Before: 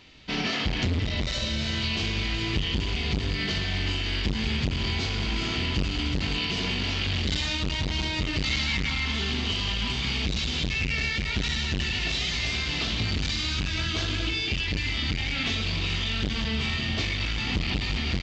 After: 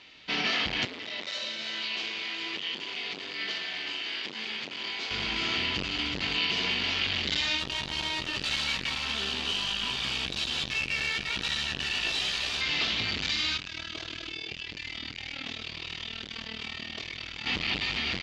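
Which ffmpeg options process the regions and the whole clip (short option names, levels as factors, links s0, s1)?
-filter_complex "[0:a]asettb=1/sr,asplit=3[s0][s1][s2];[s0]atrim=end=0.854[s3];[s1]atrim=start=0.85:end=5.11,asetpts=PTS-STARTPTS,afade=t=in:d=0.004:c=qsin,afade=t=out:st=4.256:d=0.004:c=qsin,highpass=290,flanger=delay=3.2:depth=8.6:regen=-82:speed=1.1:shape=triangular[s4];[s2]atrim=start=5.106[s5];[s3][s4]acrossfade=d=0.004:c1=hsin:c2=qsin[s6];[s6][s5]acrossfade=d=0.004:c1=qsin:c2=hsin,asettb=1/sr,asplit=3[s7][s8][s9];[s7]atrim=end=7.594[s10];[s8]atrim=start=7.59:end=12.61,asetpts=PTS-STARTPTS,afade=t=in:d=0.004:c=qsin,afade=t=out:st=5.016:d=0.004:c=qsin,aeval=exprs='clip(val(0),-1,0.0224)':c=same,bandreject=f=2100:w=8.4,asplit=2[s11][s12];[s12]adelay=15,volume=0.355[s13];[s11][s13]amix=inputs=2:normalize=0,atrim=end_sample=221382[s14];[s9]atrim=start=12.606[s15];[s10][s14]acrossfade=d=0.004:c1=hsin:c2=qsin[s16];[s16][s15]acrossfade=d=0.004:c1=qsin:c2=hsin,asettb=1/sr,asplit=3[s17][s18][s19];[s17]atrim=end=13.574[s20];[s18]atrim=start=13.57:end=17.46,asetpts=PTS-STARTPTS,afade=t=in:d=0.004:c=qsin,afade=t=out:st=3.886:d=0.004:c=qsin,acrossover=split=950|4500[s21][s22][s23];[s21]acompressor=threshold=0.0316:ratio=4[s24];[s22]acompressor=threshold=0.0126:ratio=4[s25];[s23]acompressor=threshold=0.00794:ratio=4[s26];[s24][s25][s26]amix=inputs=3:normalize=0,tremolo=f=39:d=0.857[s27];[s19]atrim=start=17.456[s28];[s20][s27]acrossfade=d=0.004:c1=hsin:c2=qsin[s29];[s29][s28]acrossfade=d=0.004:c1=qsin:c2=hsin,lowpass=3100,aemphasis=mode=production:type=riaa"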